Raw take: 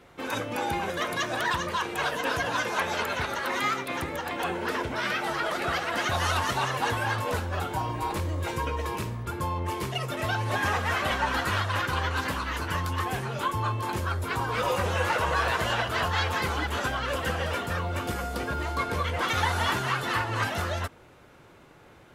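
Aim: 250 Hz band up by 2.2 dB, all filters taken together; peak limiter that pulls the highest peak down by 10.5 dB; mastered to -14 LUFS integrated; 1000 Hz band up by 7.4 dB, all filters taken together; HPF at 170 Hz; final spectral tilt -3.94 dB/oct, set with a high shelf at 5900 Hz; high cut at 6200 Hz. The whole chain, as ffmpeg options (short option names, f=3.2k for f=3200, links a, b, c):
-af "highpass=170,lowpass=6.2k,equalizer=f=250:t=o:g=3.5,equalizer=f=1k:t=o:g=8.5,highshelf=f=5.9k:g=3.5,volume=13dB,alimiter=limit=-5dB:level=0:latency=1"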